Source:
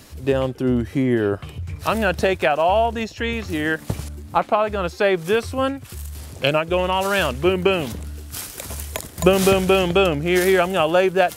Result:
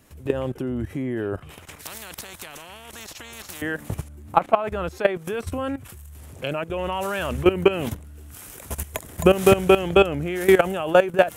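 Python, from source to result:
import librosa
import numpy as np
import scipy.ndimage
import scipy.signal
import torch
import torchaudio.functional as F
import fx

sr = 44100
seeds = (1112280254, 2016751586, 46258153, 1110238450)

y = fx.peak_eq(x, sr, hz=4600.0, db=-9.5, octaves=0.79)
y = fx.level_steps(y, sr, step_db=15)
y = fx.spectral_comp(y, sr, ratio=4.0, at=(1.5, 3.62))
y = y * librosa.db_to_amplitude(3.5)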